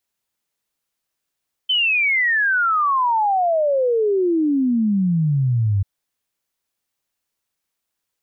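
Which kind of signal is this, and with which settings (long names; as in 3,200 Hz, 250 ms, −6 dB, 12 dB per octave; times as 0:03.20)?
exponential sine sweep 3,100 Hz → 95 Hz 4.14 s −15 dBFS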